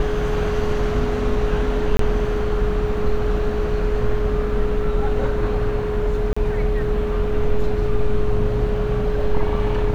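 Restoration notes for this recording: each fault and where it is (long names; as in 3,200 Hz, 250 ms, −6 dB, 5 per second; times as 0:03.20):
whistle 420 Hz −23 dBFS
0:01.97–0:01.99: drop-out 23 ms
0:06.33–0:06.37: drop-out 35 ms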